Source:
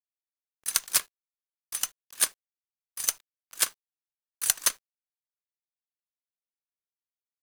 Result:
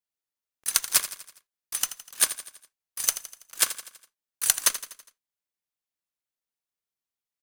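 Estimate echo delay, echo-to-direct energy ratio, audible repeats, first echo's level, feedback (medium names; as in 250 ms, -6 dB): 82 ms, -11.5 dB, 4, -13.0 dB, 52%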